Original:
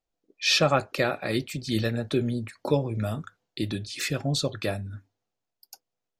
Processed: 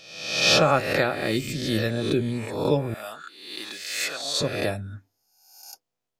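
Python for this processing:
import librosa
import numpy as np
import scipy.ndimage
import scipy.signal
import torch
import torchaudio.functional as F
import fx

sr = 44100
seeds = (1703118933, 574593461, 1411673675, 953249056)

y = fx.spec_swells(x, sr, rise_s=0.88)
y = fx.highpass(y, sr, hz=780.0, slope=12, at=(2.94, 4.41))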